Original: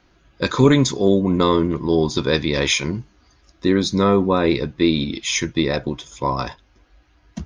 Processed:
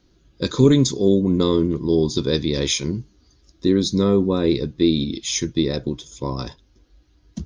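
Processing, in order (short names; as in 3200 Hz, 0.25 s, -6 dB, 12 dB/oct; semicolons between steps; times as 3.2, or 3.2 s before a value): band shelf 1300 Hz -10.5 dB 2.5 oct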